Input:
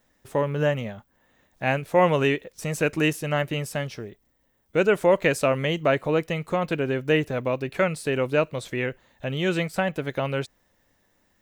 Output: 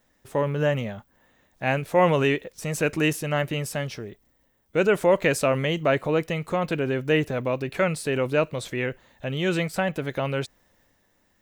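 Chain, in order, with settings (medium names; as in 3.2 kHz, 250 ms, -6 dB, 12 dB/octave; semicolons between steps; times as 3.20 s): transient shaper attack -1 dB, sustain +3 dB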